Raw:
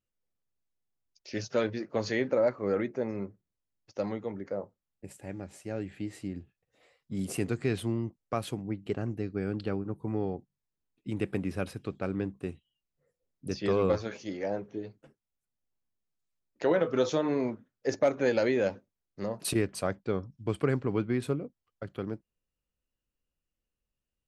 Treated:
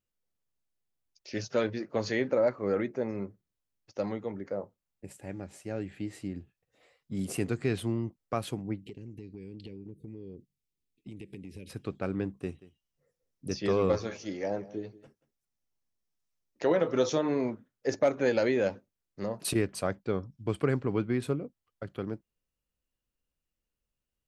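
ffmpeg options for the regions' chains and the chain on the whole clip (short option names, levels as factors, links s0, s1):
-filter_complex "[0:a]asettb=1/sr,asplit=3[s0][s1][s2];[s0]atrim=end=8.824[s3];[s1]atrim=start=8.82:end=11.7,asetpts=PTS-STARTPTS,afade=t=in:d=0.004:c=qsin,afade=t=out:st=2.876:d=0.004:c=qsin,asuperstop=centerf=1000:order=8:qfactor=0.63,acompressor=threshold=0.01:ratio=8:attack=3.2:release=140:knee=1:detection=peak[s4];[s2]atrim=start=11.696[s5];[s3][s4]acrossfade=d=0.004:c1=hsin:c2=qsin[s6];[s6][s5]acrossfade=d=0.004:c1=qsin:c2=hsin,asettb=1/sr,asplit=3[s7][s8][s9];[s7]atrim=end=12.374[s10];[s8]atrim=start=12.37:end=17.19,asetpts=PTS-STARTPTS,afade=t=in:d=0.004:c=qsin,afade=t=out:st=4.816:d=0.004:c=qsin,equalizer=f=5700:t=o:w=0.28:g=6,bandreject=f=1500:w=23,aecho=1:1:182:0.106,atrim=end_sample=212562[s11];[s9]atrim=start=17.186[s12];[s10][s11]acrossfade=d=0.004:c1=hsin:c2=qsin[s13];[s13][s12]acrossfade=d=0.004:c1=qsin:c2=hsin"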